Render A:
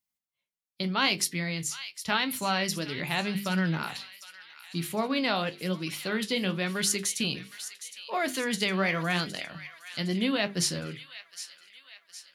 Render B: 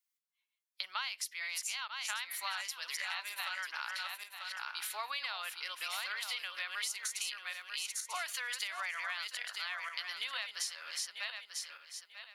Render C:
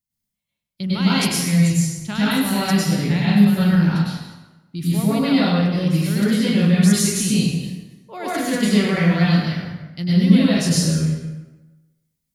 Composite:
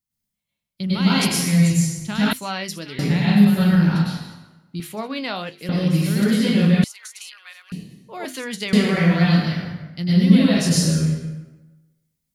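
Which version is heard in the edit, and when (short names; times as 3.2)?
C
2.33–2.99 from A
4.8–5.69 from A
6.84–7.72 from B
8.25–8.73 from A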